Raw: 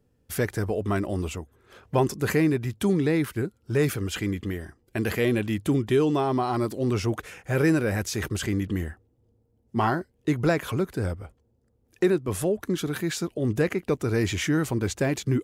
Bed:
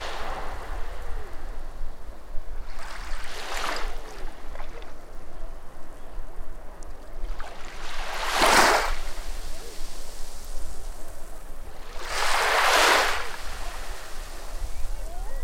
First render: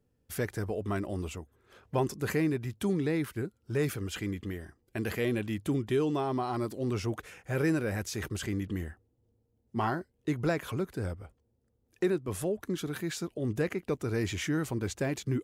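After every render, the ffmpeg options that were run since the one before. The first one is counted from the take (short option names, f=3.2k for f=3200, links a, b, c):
-af "volume=-6.5dB"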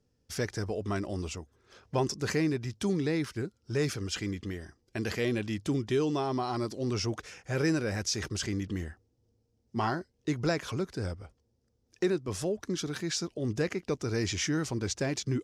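-af "lowpass=8.6k,equalizer=f=5.4k:t=o:w=0.73:g=12"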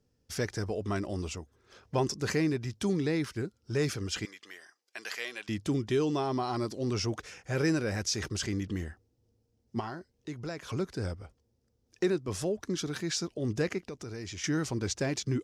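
-filter_complex "[0:a]asettb=1/sr,asplit=3[a][b][c];[a]atrim=end=4.254[d];[b]atrim=start=4.25:end=5.49,asetpts=PTS-STARTPTS,afade=t=in:d=0.004:c=qsin,afade=t=out:st=1.236:d=0.004:c=qsin,highpass=980[e];[c]atrim=start=5.486[f];[d][e]acrossfade=d=0.004:c1=hsin:c2=qsin[g];[g][f]acrossfade=d=0.004:c1=qsin:c2=hsin,asplit=3[h][i][j];[h]afade=t=out:st=9.79:d=0.02[k];[i]acompressor=threshold=-51dB:ratio=1.5:attack=3.2:release=140:knee=1:detection=peak,afade=t=in:st=9.79:d=0.02,afade=t=out:st=10.69:d=0.02[l];[j]afade=t=in:st=10.69:d=0.02[m];[k][l][m]amix=inputs=3:normalize=0,asettb=1/sr,asplit=3[n][o][p];[n]atrim=end=13.784[q];[o]atrim=start=13.78:end=14.44,asetpts=PTS-STARTPTS,afade=t=in:d=0.004:c=qsin,afade=t=out:st=0.656:d=0.004:c=qsin,acompressor=threshold=-40dB:ratio=3:attack=3.2:release=140:knee=1:detection=peak[r];[p]atrim=start=14.436[s];[q][r]acrossfade=d=0.004:c1=hsin:c2=qsin[t];[t][s]acrossfade=d=0.004:c1=qsin:c2=hsin"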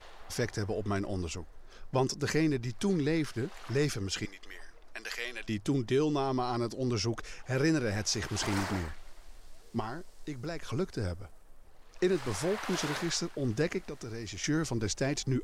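-filter_complex "[1:a]volume=-19dB[a];[0:a][a]amix=inputs=2:normalize=0"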